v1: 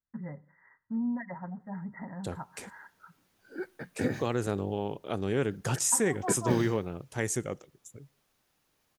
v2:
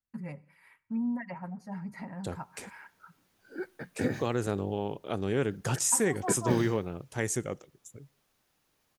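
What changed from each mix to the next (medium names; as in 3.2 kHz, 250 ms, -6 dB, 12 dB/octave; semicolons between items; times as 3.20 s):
first voice: remove brick-wall FIR low-pass 2.1 kHz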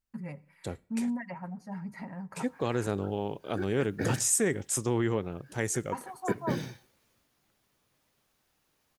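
second voice: entry -1.60 s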